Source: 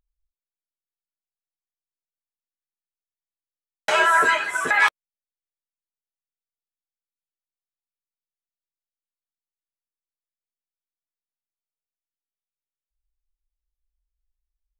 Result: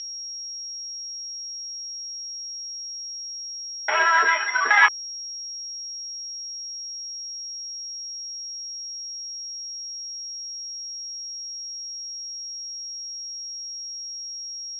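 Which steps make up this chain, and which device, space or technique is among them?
4.39–4.86 s: dynamic bell 1.1 kHz, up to +6 dB, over -31 dBFS, Q 1.1; toy sound module (decimation joined by straight lines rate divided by 8×; class-D stage that switches slowly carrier 5.6 kHz; cabinet simulation 540–4600 Hz, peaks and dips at 560 Hz -7 dB, 2 kHz +8 dB, 3.1 kHz +7 dB)

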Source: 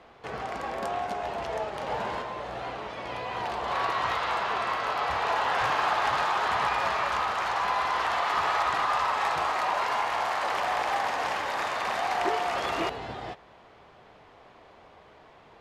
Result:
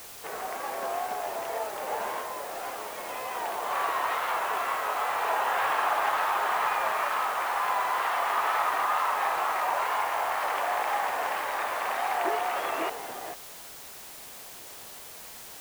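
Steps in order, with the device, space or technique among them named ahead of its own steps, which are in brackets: wax cylinder (band-pass 380–2800 Hz; wow and flutter; white noise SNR 15 dB)

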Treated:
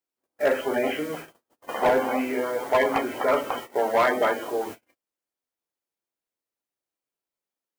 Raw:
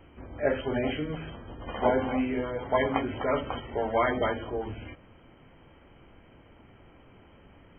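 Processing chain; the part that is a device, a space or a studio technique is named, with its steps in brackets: aircraft radio (band-pass 370–2600 Hz; hard clipper -22 dBFS, distortion -13 dB; white noise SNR 20 dB; gate -42 dBFS, range -46 dB); 3.70–4.53 s: high-pass 95 Hz; trim +7 dB

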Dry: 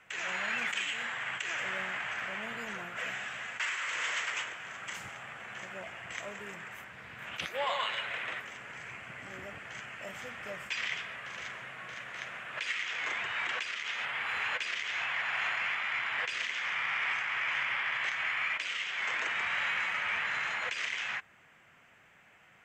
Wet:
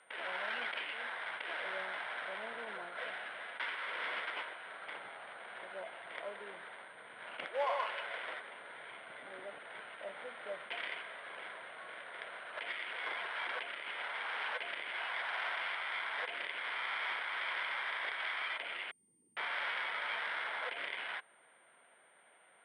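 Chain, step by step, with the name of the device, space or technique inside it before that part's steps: 18.91–19.37 s: inverse Chebyshev low-pass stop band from 580 Hz, stop band 50 dB; toy sound module (decimation joined by straight lines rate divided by 8×; class-D stage that switches slowly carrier 8.8 kHz; cabinet simulation 550–4000 Hz, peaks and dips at 800 Hz -4 dB, 1.2 kHz -8 dB, 1.8 kHz -7 dB, 2.6 kHz -9 dB, 3.8 kHz -5 dB); trim +4.5 dB

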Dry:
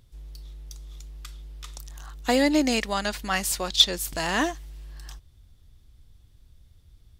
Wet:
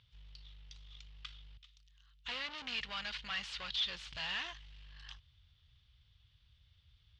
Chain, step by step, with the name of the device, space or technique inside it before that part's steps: 1.57–2.26 s: amplifier tone stack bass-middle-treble 6-0-2; scooped metal amplifier (valve stage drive 33 dB, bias 0.35; cabinet simulation 82–4000 Hz, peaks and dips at 130 Hz +4 dB, 260 Hz +5 dB, 700 Hz -5 dB, 3 kHz +6 dB; amplifier tone stack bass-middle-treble 10-0-10); trim +3 dB

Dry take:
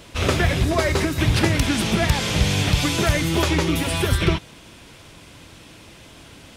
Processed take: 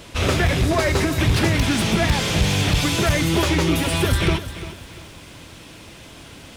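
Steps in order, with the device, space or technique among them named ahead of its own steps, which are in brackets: saturation between pre-emphasis and de-emphasis (treble shelf 2.7 kHz +12 dB; saturation -13 dBFS, distortion -14 dB; treble shelf 2.7 kHz -12 dB); bit-crushed delay 346 ms, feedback 35%, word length 8-bit, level -13.5 dB; trim +3 dB

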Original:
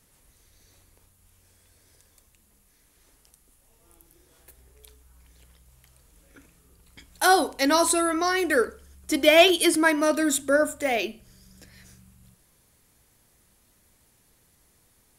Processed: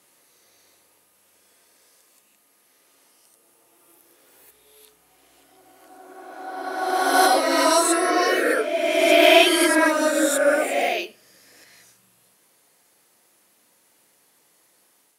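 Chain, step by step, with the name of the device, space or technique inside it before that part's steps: ghost voice (reverse; reverberation RT60 2.4 s, pre-delay 8 ms, DRR -6.5 dB; reverse; high-pass 400 Hz 12 dB/octave); trim -3 dB

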